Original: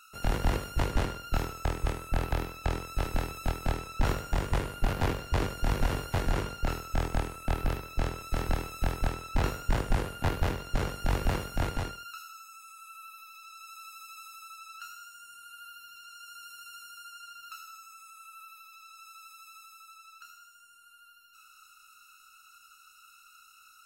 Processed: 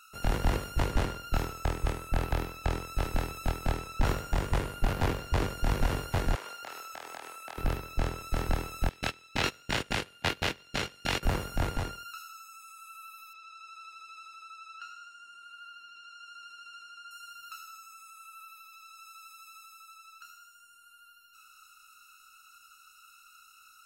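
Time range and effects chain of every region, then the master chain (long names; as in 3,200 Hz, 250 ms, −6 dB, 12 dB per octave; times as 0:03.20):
0:06.35–0:07.58: high-pass filter 650 Hz + downward compressor, threshold −37 dBFS
0:08.89–0:11.23: noise gate −30 dBFS, range −19 dB + meter weighting curve D
0:13.33–0:17.11: band-pass filter 180–4,500 Hz + parametric band 590 Hz +7 dB 0.32 octaves
whole clip: no processing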